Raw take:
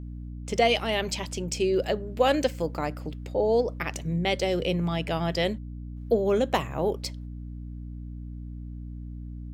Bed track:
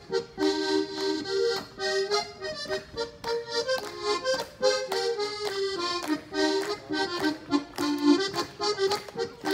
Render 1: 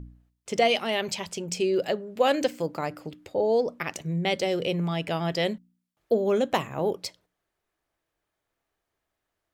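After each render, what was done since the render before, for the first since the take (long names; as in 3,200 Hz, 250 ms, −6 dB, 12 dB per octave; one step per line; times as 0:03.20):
hum removal 60 Hz, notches 5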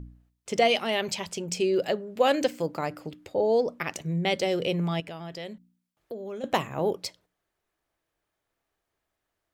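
0:05.00–0:06.44: downward compressor 2.5 to 1, threshold −41 dBFS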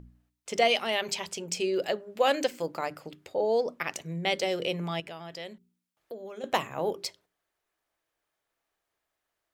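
low-shelf EQ 330 Hz −8.5 dB
mains-hum notches 50/100/150/200/250/300/350/400 Hz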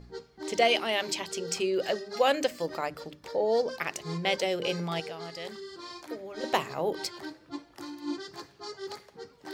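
mix in bed track −13.5 dB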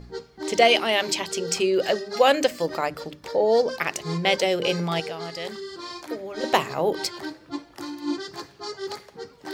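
level +6.5 dB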